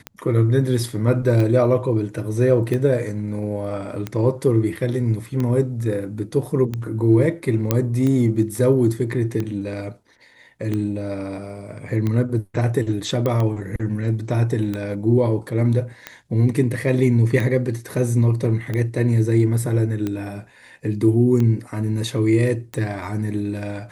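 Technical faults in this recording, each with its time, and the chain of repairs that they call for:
tick 45 rpm -13 dBFS
7.71 pop -3 dBFS
13.26 pop -11 dBFS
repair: de-click

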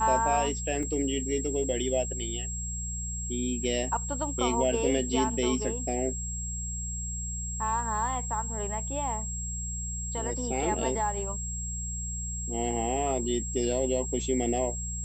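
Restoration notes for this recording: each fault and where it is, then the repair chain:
hum 60 Hz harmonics 3 -36 dBFS
tone 7600 Hz -35 dBFS
0.83 gap 2.2 ms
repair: de-hum 60 Hz, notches 3; notch 7600 Hz, Q 30; interpolate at 0.83, 2.2 ms

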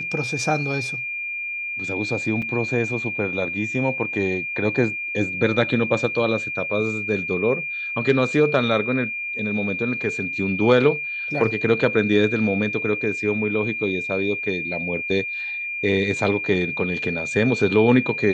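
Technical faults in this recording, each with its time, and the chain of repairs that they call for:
tone 2400 Hz -26 dBFS
2.42 gap 4.3 ms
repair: notch 2400 Hz, Q 30; interpolate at 2.42, 4.3 ms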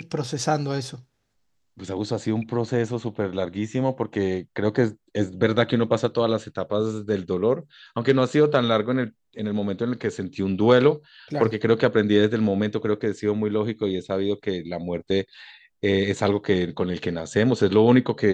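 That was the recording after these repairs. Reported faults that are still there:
none

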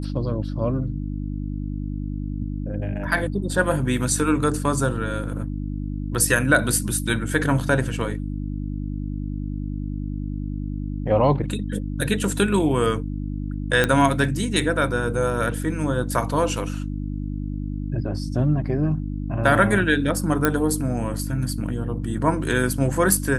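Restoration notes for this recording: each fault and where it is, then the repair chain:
hum 50 Hz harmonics 6 -28 dBFS
13.84 pop -5 dBFS
20.45 pop -4 dBFS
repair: de-click; de-hum 50 Hz, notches 6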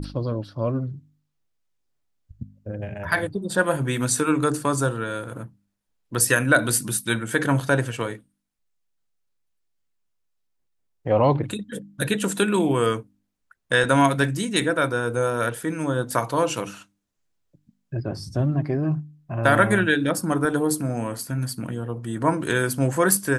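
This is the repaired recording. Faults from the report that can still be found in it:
none

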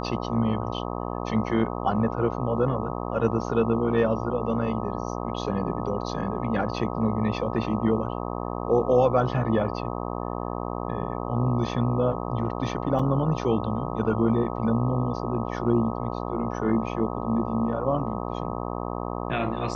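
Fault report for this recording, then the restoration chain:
buzz 60 Hz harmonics 21 -31 dBFS
12.99 gap 4.2 ms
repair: de-hum 60 Hz, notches 21; interpolate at 12.99, 4.2 ms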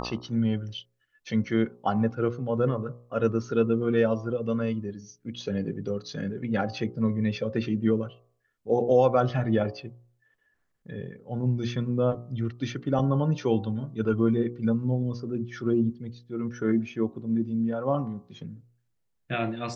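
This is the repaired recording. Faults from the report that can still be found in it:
none

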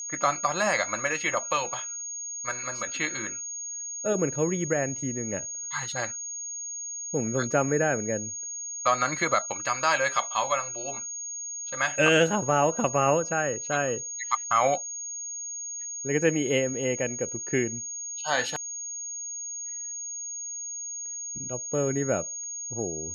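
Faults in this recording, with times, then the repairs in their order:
tone 6600 Hz -33 dBFS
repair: notch 6600 Hz, Q 30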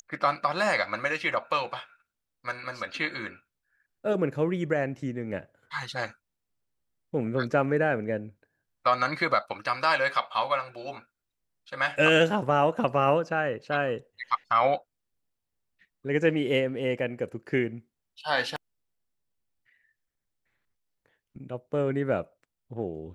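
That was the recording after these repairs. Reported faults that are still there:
none

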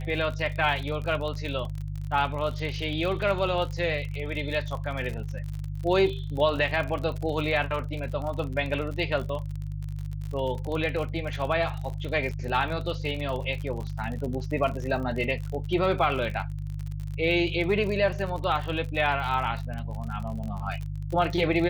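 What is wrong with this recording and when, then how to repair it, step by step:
crackle 47/s -32 dBFS
hum 50 Hz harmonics 3 -33 dBFS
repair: de-click; de-hum 50 Hz, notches 3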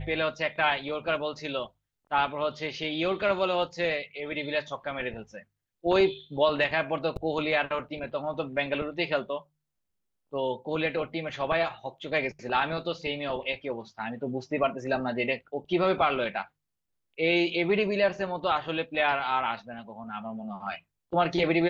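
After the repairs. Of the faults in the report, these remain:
none

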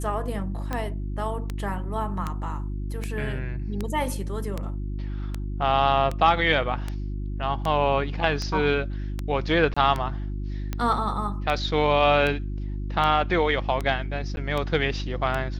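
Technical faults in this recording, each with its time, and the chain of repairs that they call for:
hum 50 Hz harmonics 7 -30 dBFS
tick 78 rpm -15 dBFS
9.74–9.77 gap 25 ms
14.36–14.37 gap 11 ms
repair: de-click; de-hum 50 Hz, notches 7; interpolate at 9.74, 25 ms; interpolate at 14.36, 11 ms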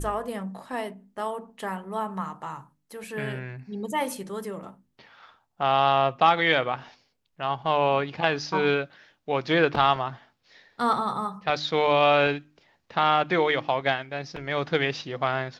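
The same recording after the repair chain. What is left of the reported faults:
none

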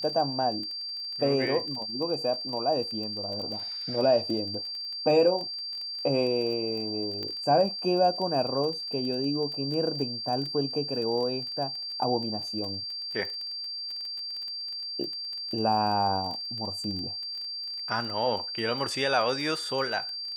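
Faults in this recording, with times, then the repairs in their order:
crackle 21/s -34 dBFS
tone 4700 Hz -33 dBFS
7.23 pop -22 dBFS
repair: de-click; notch 4700 Hz, Q 30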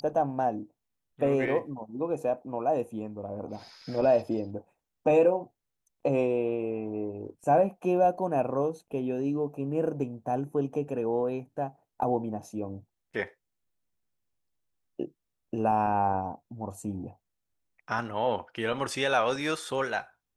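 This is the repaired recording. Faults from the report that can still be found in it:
none

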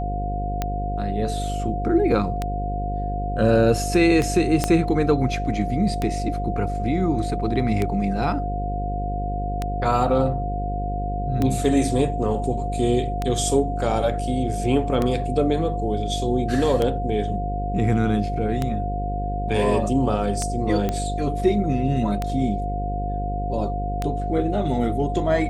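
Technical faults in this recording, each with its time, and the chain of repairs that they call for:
buzz 50 Hz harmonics 11 -27 dBFS
tick 33 1/3 rpm -10 dBFS
tone 710 Hz -28 dBFS
4.64 pop -6 dBFS
20.89 pop -11 dBFS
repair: de-click; notch 710 Hz, Q 30; de-hum 50 Hz, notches 11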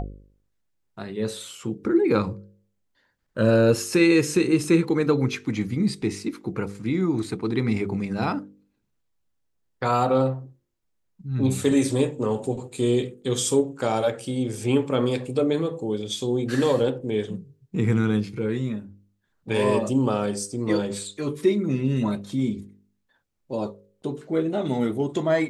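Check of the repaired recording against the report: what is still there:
4.64 pop
20.89 pop

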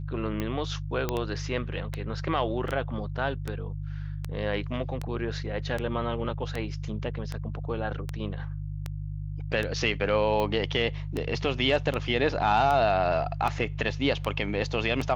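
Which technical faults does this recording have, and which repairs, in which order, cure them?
hum 50 Hz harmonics 3 -34 dBFS
tick 78 rpm -17 dBFS
1.09 pop -13 dBFS
2.68 gap 2.1 ms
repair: de-click; de-hum 50 Hz, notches 3; interpolate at 2.68, 2.1 ms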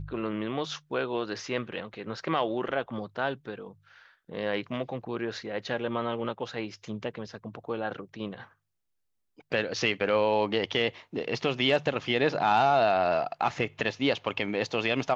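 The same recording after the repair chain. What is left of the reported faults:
1.09 pop

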